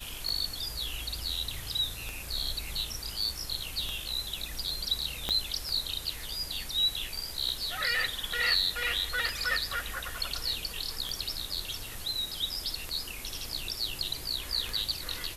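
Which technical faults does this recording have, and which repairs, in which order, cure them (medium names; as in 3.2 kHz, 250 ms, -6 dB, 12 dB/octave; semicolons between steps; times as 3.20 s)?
tick 33 1/3 rpm -19 dBFS
5.29 s: pop -14 dBFS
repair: de-click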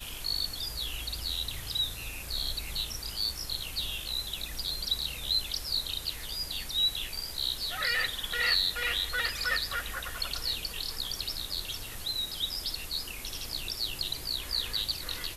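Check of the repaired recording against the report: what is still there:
5.29 s: pop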